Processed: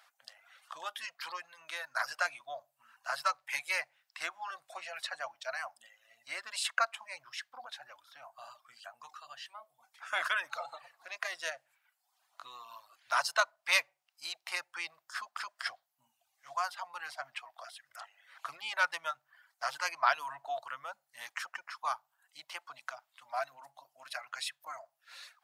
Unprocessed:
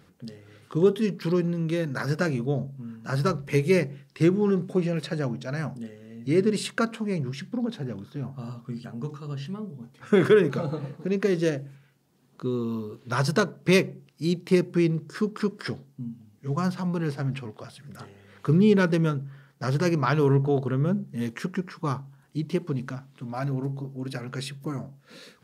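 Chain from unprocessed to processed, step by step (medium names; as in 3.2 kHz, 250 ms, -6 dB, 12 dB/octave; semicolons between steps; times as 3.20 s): elliptic high-pass 670 Hz, stop band 40 dB; reverb removal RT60 0.77 s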